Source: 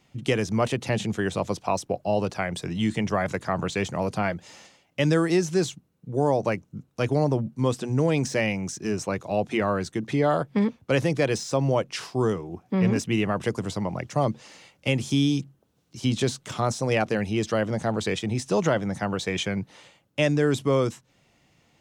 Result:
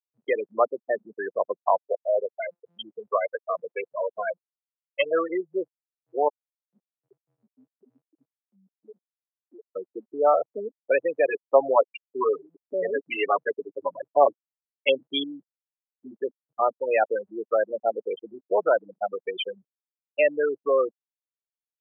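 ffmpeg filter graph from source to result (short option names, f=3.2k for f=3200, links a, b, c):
-filter_complex "[0:a]asettb=1/sr,asplit=3[a][b][c];[a]atrim=end=1.804[d];[b]atrim=start=1.8:end=5.14,asetpts=PTS-STARTPTS,afade=t=in:d=0.004:c=qsin,afade=t=out:st=3.336:d=0.004:c=qsin,aeval=exprs='if(lt(val(0),0),0.251*val(0),val(0))':c=same,lowpass=f=3.4k:t=q:w=1.7,aecho=1:1:1.9:0.46,atrim=end_sample=147294[e];[c]atrim=start=5.136[f];[d][e]acrossfade=d=0.004:c1=hsin:c2=qsin[g];[g][f]acrossfade=d=0.004:c1=qsin:c2=hsin,asettb=1/sr,asplit=3[h][i][j];[h]atrim=end=6.284[k];[i]atrim=start=6.28:end=9.76,asetpts=PTS-STARTPTS,afade=t=in:d=0.004:c=qsin,afade=t=out:st=3.476:d=0.004:c=qsin,asplit=2[l][m];[m]adelay=16,volume=-11.5dB[n];[l][n]amix=inputs=2:normalize=0,atrim=end_sample=153468,acompressor=threshold=-30dB:ratio=12:attack=3.2:release=140:knee=1:detection=peak,equalizer=f=650:t=o:w=0.67:g=-5.5[o];[j]atrim=start=9.756[p];[k][o]acrossfade=d=0.004:c1=hsin:c2=qsin[q];[q][p]acrossfade=d=0.004:c1=qsin:c2=hsin,asettb=1/sr,asplit=3[r][s][t];[r]atrim=end=11.294[u];[s]atrim=start=11.29:end=15.24,asetpts=PTS-STARTPTS,afade=t=in:d=0.004:c=qsin,afade=t=out:st=3.946:d=0.004:c=qsin,aecho=1:1:7.2:0.92,atrim=end_sample=174195,acrusher=bits=8:dc=4:mix=0:aa=0.000001[v];[t]atrim=start=15.236[w];[u][v]acrossfade=d=0.004:c1=hsin:c2=qsin[x];[x][w]acrossfade=d=0.004:c1=qsin:c2=hsin,lowpass=4.6k,afftfilt=real='re*gte(hypot(re,im),0.158)':imag='im*gte(hypot(re,im),0.158)':win_size=1024:overlap=0.75,highpass=f=490:w=0.5412,highpass=f=490:w=1.3066,volume=5.5dB"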